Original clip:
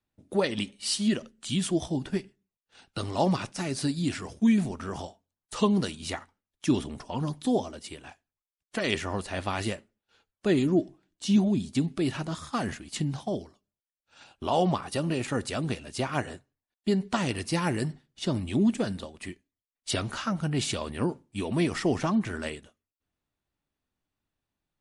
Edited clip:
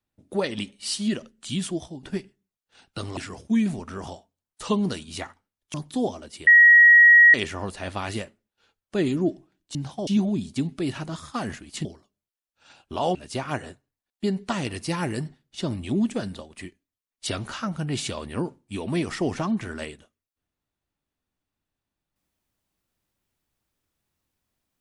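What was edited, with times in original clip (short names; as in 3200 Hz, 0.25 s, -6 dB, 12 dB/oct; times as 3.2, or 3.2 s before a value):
1.61–2.03 fade out, to -14.5 dB
3.17–4.09 cut
6.66–7.25 cut
7.98–8.85 bleep 1900 Hz -9 dBFS
13.04–13.36 move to 11.26
14.66–15.79 cut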